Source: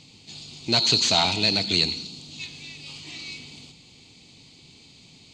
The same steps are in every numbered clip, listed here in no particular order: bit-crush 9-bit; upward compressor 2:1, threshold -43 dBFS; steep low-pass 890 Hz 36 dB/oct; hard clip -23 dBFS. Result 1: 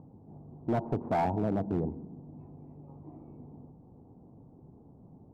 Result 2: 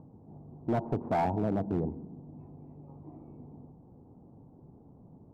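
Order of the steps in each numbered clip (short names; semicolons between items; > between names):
upward compressor > bit-crush > steep low-pass > hard clip; bit-crush > upward compressor > steep low-pass > hard clip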